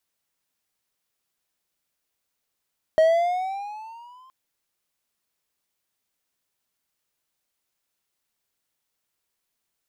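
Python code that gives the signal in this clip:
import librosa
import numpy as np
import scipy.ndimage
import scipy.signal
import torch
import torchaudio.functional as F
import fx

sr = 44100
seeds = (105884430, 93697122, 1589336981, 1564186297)

y = fx.riser_tone(sr, length_s=1.32, level_db=-10.5, wave='triangle', hz=628.0, rise_st=9.0, swell_db=-36.0)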